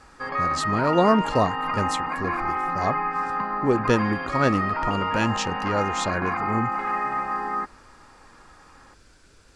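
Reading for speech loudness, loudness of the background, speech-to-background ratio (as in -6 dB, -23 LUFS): -26.0 LUFS, -26.5 LUFS, 0.5 dB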